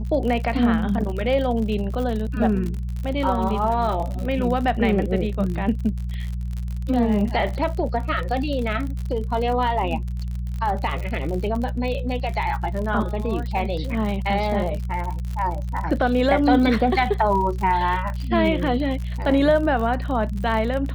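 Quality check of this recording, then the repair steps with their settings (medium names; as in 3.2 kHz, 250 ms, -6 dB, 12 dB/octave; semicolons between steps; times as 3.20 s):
crackle 56 per s -28 dBFS
hum 60 Hz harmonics 3 -27 dBFS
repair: de-click; de-hum 60 Hz, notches 3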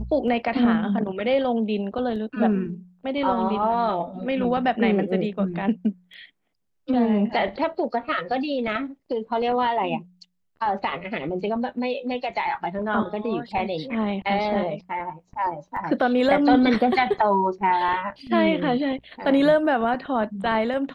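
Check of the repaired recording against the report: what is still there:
nothing left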